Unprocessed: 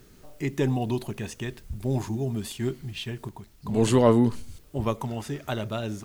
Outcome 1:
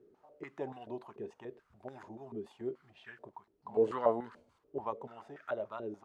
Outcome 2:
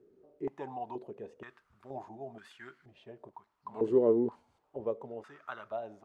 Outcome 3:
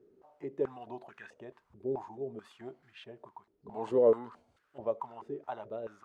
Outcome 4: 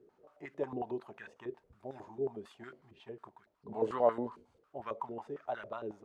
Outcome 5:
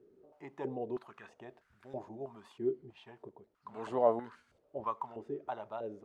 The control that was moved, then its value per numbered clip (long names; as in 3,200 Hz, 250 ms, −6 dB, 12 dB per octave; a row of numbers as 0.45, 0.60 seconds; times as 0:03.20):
band-pass on a step sequencer, speed: 6.9, 2.1, 4.6, 11, 3.1 Hertz